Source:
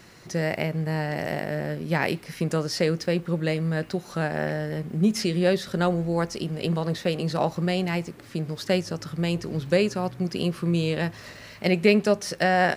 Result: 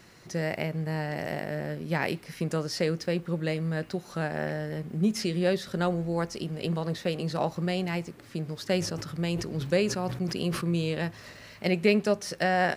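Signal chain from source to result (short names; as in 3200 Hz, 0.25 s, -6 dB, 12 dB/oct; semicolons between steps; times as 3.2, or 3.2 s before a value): 8.64–10.82 sustainer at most 73 dB/s; gain -4 dB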